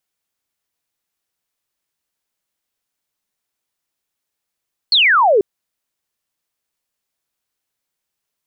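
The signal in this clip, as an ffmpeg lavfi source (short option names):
-f lavfi -i "aevalsrc='0.355*clip(t/0.002,0,1)*clip((0.49-t)/0.002,0,1)*sin(2*PI*4500*0.49/log(370/4500)*(exp(log(370/4500)*t/0.49)-1))':d=0.49:s=44100"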